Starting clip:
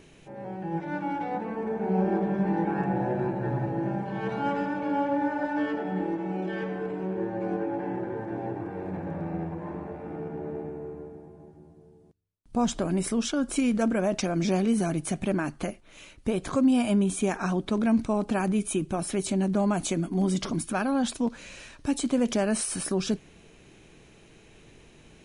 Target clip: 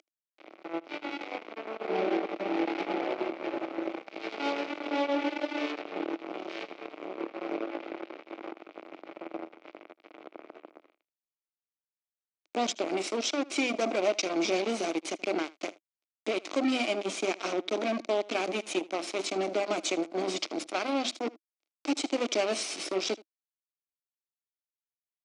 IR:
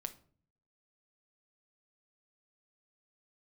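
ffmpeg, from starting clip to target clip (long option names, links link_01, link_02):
-af "agate=range=-8dB:threshold=-39dB:ratio=16:detection=peak,highshelf=frequency=2800:gain=11.5,bandreject=frequency=50:width_type=h:width=6,bandreject=frequency=100:width_type=h:width=6,bandreject=frequency=150:width_type=h:width=6,bandreject=frequency=200:width_type=h:width=6,bandreject=frequency=250:width_type=h:width=6,bandreject=frequency=300:width_type=h:width=6,bandreject=frequency=350:width_type=h:width=6,bandreject=frequency=400:width_type=h:width=6,acompressor=mode=upward:threshold=-27dB:ratio=2.5,acrusher=bits=3:mix=0:aa=0.5,highpass=frequency=290:width=0.5412,highpass=frequency=290:width=1.3066,equalizer=frequency=320:width_type=q:width=4:gain=8,equalizer=frequency=630:width_type=q:width=4:gain=5,equalizer=frequency=950:width_type=q:width=4:gain=-5,equalizer=frequency=1700:width_type=q:width=4:gain=-9,equalizer=frequency=2300:width_type=q:width=4:gain=6,lowpass=frequency=5700:width=0.5412,lowpass=frequency=5700:width=1.3066,aecho=1:1:78:0.0841,volume=-4dB"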